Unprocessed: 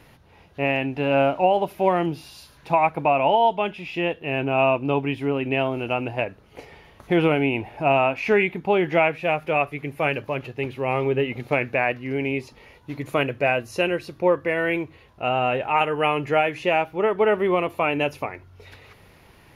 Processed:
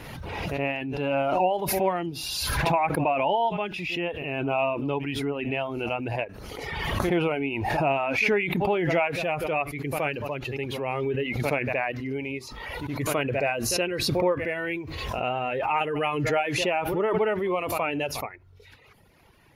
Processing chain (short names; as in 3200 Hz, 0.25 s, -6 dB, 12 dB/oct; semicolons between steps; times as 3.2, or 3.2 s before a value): reverb removal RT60 0.97 s; pre-echo 72 ms -23 dB; backwards sustainer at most 26 dB/s; gain -5 dB